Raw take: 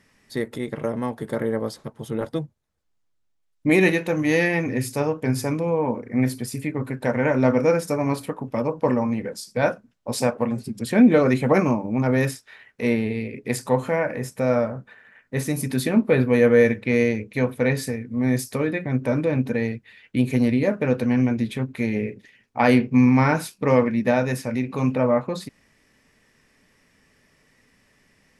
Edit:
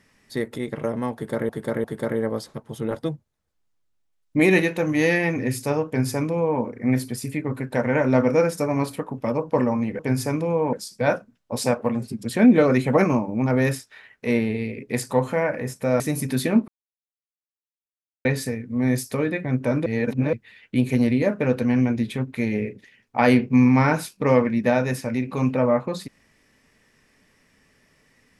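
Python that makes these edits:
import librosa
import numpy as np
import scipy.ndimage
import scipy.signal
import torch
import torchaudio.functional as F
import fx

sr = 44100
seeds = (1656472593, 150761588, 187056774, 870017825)

y = fx.edit(x, sr, fx.repeat(start_s=1.14, length_s=0.35, count=3),
    fx.duplicate(start_s=5.17, length_s=0.74, to_s=9.29),
    fx.cut(start_s=14.56, length_s=0.85),
    fx.silence(start_s=16.09, length_s=1.57),
    fx.reverse_span(start_s=19.27, length_s=0.47), tone=tone)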